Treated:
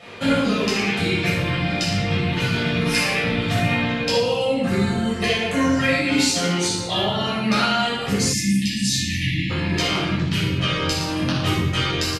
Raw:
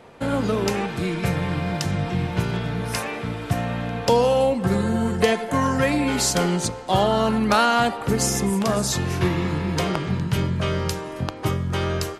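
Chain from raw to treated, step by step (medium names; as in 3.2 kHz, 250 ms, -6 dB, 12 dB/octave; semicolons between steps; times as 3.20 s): bass shelf 190 Hz +8.5 dB; hum notches 60/120 Hz; delay 116 ms -9.5 dB; gain riding 0.5 s; frequency weighting D; compression, threshold -19 dBFS, peak gain reduction 10 dB; reverb removal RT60 1.6 s; simulated room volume 650 m³, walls mixed, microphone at 6.4 m; spectral selection erased 8.33–9.50 s, 330–1700 Hz; trim -9 dB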